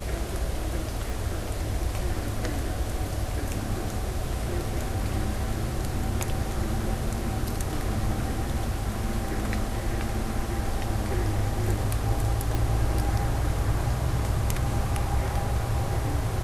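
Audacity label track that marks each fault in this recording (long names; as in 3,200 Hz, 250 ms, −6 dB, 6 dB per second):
1.100000	1.100000	click
12.550000	12.550000	click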